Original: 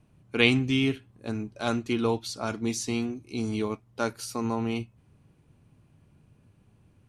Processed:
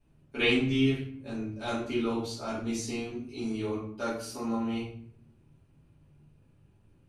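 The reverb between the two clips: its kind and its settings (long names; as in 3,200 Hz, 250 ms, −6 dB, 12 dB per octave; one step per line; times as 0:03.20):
rectangular room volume 89 cubic metres, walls mixed, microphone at 2.7 metres
level −14.5 dB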